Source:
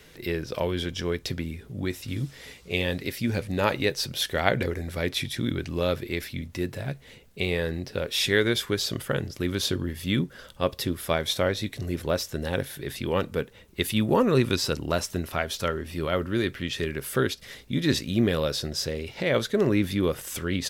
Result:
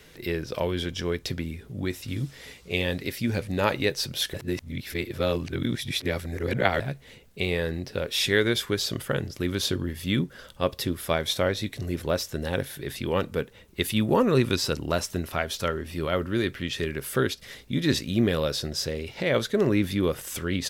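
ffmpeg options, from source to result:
-filter_complex "[0:a]asplit=3[s0][s1][s2];[s0]atrim=end=4.342[s3];[s1]atrim=start=4.338:end=6.802,asetpts=PTS-STARTPTS,areverse[s4];[s2]atrim=start=6.798[s5];[s3][s4]acrossfade=d=0.004:c1=hsin:c2=hsin[s6];[s6][s5]acrossfade=d=0.004:c1=hsin:c2=hsin"

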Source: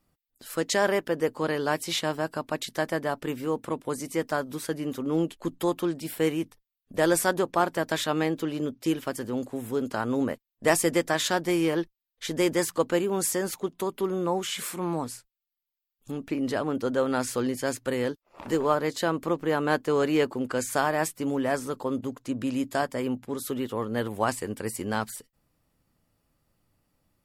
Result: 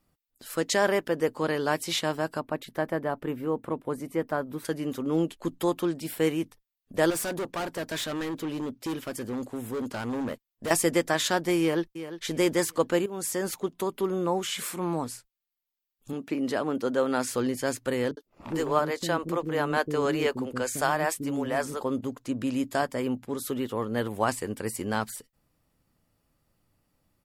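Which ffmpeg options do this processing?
-filter_complex "[0:a]asettb=1/sr,asplit=3[s0][s1][s2];[s0]atrim=end=2.404[s3];[s1]atrim=start=2.4:end=4.65,asetpts=PTS-STARTPTS,afade=t=in:d=0.004:c=qsin,afade=t=out:st=2.246:d=0.004:c=qsin,equalizer=f=6400:t=o:w=2.2:g=-14.5[s4];[s2]atrim=start=4.646[s5];[s3][s4]acrossfade=d=0.004:c1=hsin:c2=qsin[s6];[s6][s5]acrossfade=d=0.004:c1=qsin:c2=hsin,asettb=1/sr,asplit=3[s7][s8][s9];[s7]atrim=end=7.104[s10];[s8]atrim=start=7.1:end=10.71,asetpts=PTS-STARTPTS,afade=t=in:d=0.004:c=qsin,afade=t=out:st=3.606:d=0.004:c=qsin,volume=25.1,asoftclip=hard,volume=0.0398[s11];[s9]atrim=start=10.706[s12];[s10][s11]acrossfade=d=0.004:c1=hsin:c2=qsin[s13];[s13][s12]acrossfade=d=0.004:c1=qsin:c2=hsin,asplit=2[s14][s15];[s15]afade=t=in:st=11.6:d=0.01,afade=t=out:st=12.25:d=0.01,aecho=0:1:350|700|1050:0.251189|0.0753566|0.022607[s16];[s14][s16]amix=inputs=2:normalize=0,asettb=1/sr,asplit=3[s17][s18][s19];[s17]atrim=end=16.134[s20];[s18]atrim=start=16.13:end=17.34,asetpts=PTS-STARTPTS,afade=t=in:d=0.004:c=qsin,afade=t=out:st=1.206:d=0.004:c=qsin,highpass=160[s21];[s19]atrim=start=17.336[s22];[s20][s21]acrossfade=d=0.004:c1=hsin:c2=qsin[s23];[s23][s22]acrossfade=d=0.004:c1=qsin:c2=hsin,asettb=1/sr,asplit=3[s24][s25][s26];[s24]atrim=end=18.114[s27];[s25]atrim=start=18.11:end=21.81,asetpts=PTS-STARTPTS,afade=t=in:d=0.004:c=qsin,afade=t=out:st=3.696:d=0.004:c=qsin,acrossover=split=350[s28][s29];[s29]adelay=60[s30];[s28][s30]amix=inputs=2:normalize=0,atrim=end_sample=163170[s31];[s26]atrim=start=21.806[s32];[s27][s31]acrossfade=d=0.004:c1=hsin:c2=qsin[s33];[s33][s32]acrossfade=d=0.004:c1=qsin:c2=hsin,asplit=2[s34][s35];[s34]atrim=end=13.06,asetpts=PTS-STARTPTS,afade=t=out:st=13.056:d=0.004:c=hsin:silence=0.223872[s36];[s35]atrim=start=13.06,asetpts=PTS-STARTPTS,afade=t=in:d=0.42:silence=0.223872[s37];[s36][s37]concat=n=2:v=0:a=1"

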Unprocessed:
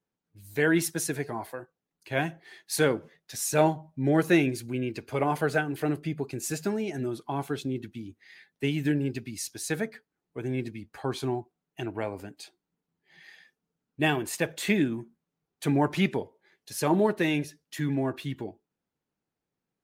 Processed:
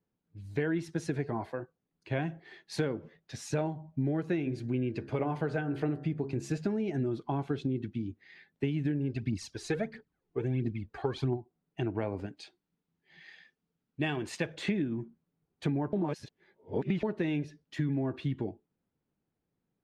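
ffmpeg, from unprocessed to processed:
-filter_complex "[0:a]asettb=1/sr,asplit=3[s0][s1][s2];[s0]atrim=end=4.364[s3];[s1]atrim=start=4.36:end=6.58,asetpts=PTS-STARTPTS,afade=t=in:d=0.004:c=qsin,afade=t=out:st=2.216:d=0.004:c=qsin,bandreject=f=68.33:t=h:w=4,bandreject=f=136.66:t=h:w=4,bandreject=f=204.99:t=h:w=4,bandreject=f=273.32:t=h:w=4,bandreject=f=341.65:t=h:w=4,bandreject=f=409.98:t=h:w=4,bandreject=f=478.31:t=h:w=4,bandreject=f=546.64:t=h:w=4,bandreject=f=614.97:t=h:w=4,bandreject=f=683.3:t=h:w=4,bandreject=f=751.63:t=h:w=4,bandreject=f=819.96:t=h:w=4,bandreject=f=888.29:t=h:w=4,bandreject=f=956.62:t=h:w=4,bandreject=f=1024.95:t=h:w=4,bandreject=f=1093.28:t=h:w=4,bandreject=f=1161.61:t=h:w=4,bandreject=f=1229.94:t=h:w=4,bandreject=f=1298.27:t=h:w=4,bandreject=f=1366.6:t=h:w=4,bandreject=f=1434.93:t=h:w=4,bandreject=f=1503.26:t=h:w=4,bandreject=f=1571.59:t=h:w=4,bandreject=f=1639.92:t=h:w=4,bandreject=f=1708.25:t=h:w=4,bandreject=f=1776.58:t=h:w=4,bandreject=f=1844.91:t=h:w=4,bandreject=f=1913.24:t=h:w=4[s4];[s2]atrim=start=6.576[s5];[s3][s4]acrossfade=d=0.004:c1=hsin:c2=qsin[s6];[s6][s5]acrossfade=d=0.004:c1=qsin:c2=hsin,asplit=3[s7][s8][s9];[s7]afade=t=out:st=9.1:d=0.02[s10];[s8]aphaser=in_gain=1:out_gain=1:delay=2.9:decay=0.64:speed=1.5:type=triangular,afade=t=in:st=9.1:d=0.02,afade=t=out:st=11.36:d=0.02[s11];[s9]afade=t=in:st=11.36:d=0.02[s12];[s10][s11][s12]amix=inputs=3:normalize=0,asettb=1/sr,asplit=3[s13][s14][s15];[s13]atrim=end=12.264[s16];[s14]atrim=start=12.26:end=14.55,asetpts=PTS-STARTPTS,afade=t=in:d=0.004:c=qsin,afade=t=out:st=2.286:d=0.004:c=qsin,tiltshelf=f=1400:g=-4.5[s17];[s15]atrim=start=14.546[s18];[s16][s17]acrossfade=d=0.004:c1=hsin:c2=qsin[s19];[s19][s18]acrossfade=d=0.004:c1=qsin:c2=hsin,asplit=3[s20][s21][s22];[s20]atrim=end=15.932[s23];[s21]atrim=start=15.928:end=17.032,asetpts=PTS-STARTPTS,areverse[s24];[s22]atrim=start=17.028[s25];[s23][s24]acrossfade=d=0.004:c1=hsin:c2=hsin[s26];[s26][s25]acrossfade=d=0.004:c1=hsin:c2=hsin,lowpass=4100,lowshelf=f=460:g=9.5,acompressor=threshold=0.0631:ratio=12,volume=0.708"

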